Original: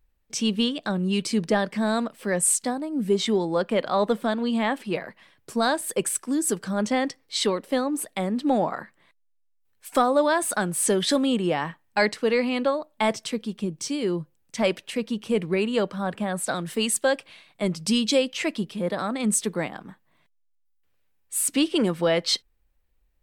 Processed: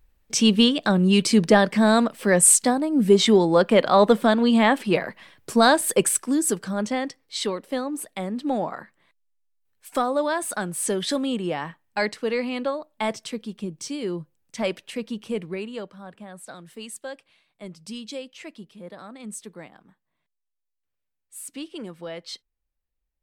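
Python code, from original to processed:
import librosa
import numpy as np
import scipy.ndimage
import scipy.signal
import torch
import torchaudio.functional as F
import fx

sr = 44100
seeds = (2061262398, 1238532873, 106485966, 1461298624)

y = fx.gain(x, sr, db=fx.line((5.89, 6.5), (7.05, -3.0), (15.23, -3.0), (16.03, -13.5)))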